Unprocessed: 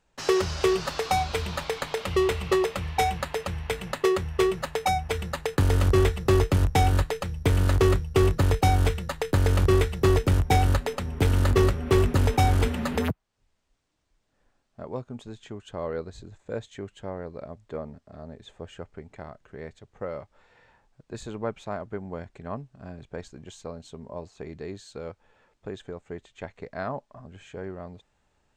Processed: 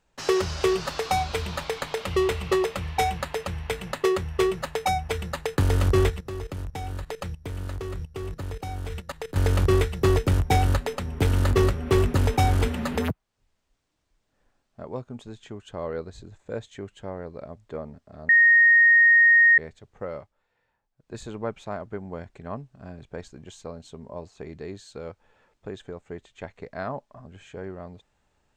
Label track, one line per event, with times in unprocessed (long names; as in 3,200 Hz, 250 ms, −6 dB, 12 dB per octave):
6.100000	9.360000	output level in coarse steps of 16 dB
18.290000	19.580000	beep over 1,860 Hz −12.5 dBFS
20.160000	21.150000	duck −15 dB, fades 0.19 s